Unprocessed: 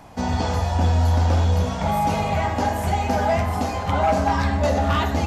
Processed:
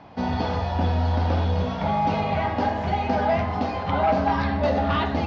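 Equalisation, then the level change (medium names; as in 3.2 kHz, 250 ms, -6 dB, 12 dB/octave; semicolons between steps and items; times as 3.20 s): high-pass 250 Hz 6 dB/octave; inverse Chebyshev low-pass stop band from 8.4 kHz, stop band 40 dB; bass shelf 320 Hz +7.5 dB; -2.0 dB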